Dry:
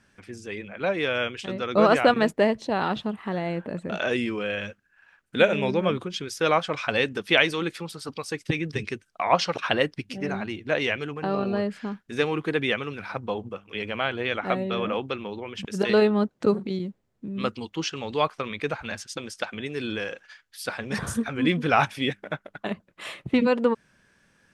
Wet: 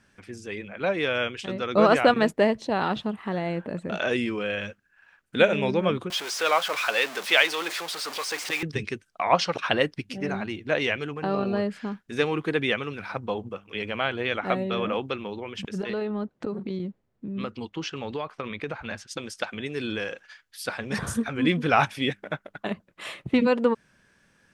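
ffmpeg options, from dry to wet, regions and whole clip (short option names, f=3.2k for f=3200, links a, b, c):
-filter_complex "[0:a]asettb=1/sr,asplit=3[a][b][c];[a]atrim=end=6.104[d];[b]atrim=start=6.1:end=8.63,asetpts=PTS-STARTPTS,afade=t=in:d=0.004:c=qsin,afade=t=out:st=2.526:d=0.004:c=qsin,aeval=exprs='val(0)+0.5*0.0473*sgn(val(0))':c=same,highpass=620,acrossover=split=7300[e][f];[f]acompressor=threshold=-41dB:ratio=4:attack=1:release=60[g];[e][g]amix=inputs=2:normalize=0[h];[c]atrim=start=8.626[i];[d][h]acrossfade=d=0.004:c1=hsin:c2=qsin[j];[j][i]acrossfade=d=0.004:c1=qsin:c2=hsin,asettb=1/sr,asplit=3[k][l][m];[k]atrim=end=15.694[n];[l]atrim=start=15.69:end=19.11,asetpts=PTS-STARTPTS,afade=t=in:d=0.004:c=qsin,afade=t=out:st=3.416:d=0.004:c=qsin,highshelf=f=5.1k:g=-11.5,acompressor=threshold=-26dB:ratio=10:attack=3.2:release=140:knee=1:detection=peak[o];[m]atrim=start=19.106[p];[n][o]acrossfade=d=0.004:c1=hsin:c2=qsin[q];[q][p]acrossfade=d=0.004:c1=qsin:c2=hsin"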